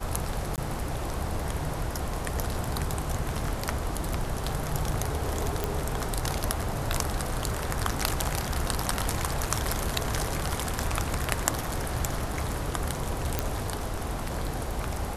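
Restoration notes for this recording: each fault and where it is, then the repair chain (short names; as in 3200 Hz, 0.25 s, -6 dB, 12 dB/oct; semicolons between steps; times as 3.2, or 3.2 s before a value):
0.56–0.58 gap 18 ms
5.64 pop
13.39 pop -9 dBFS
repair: de-click; interpolate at 0.56, 18 ms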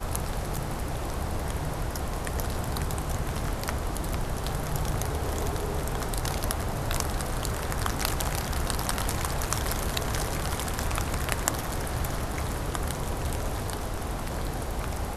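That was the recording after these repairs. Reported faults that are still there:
none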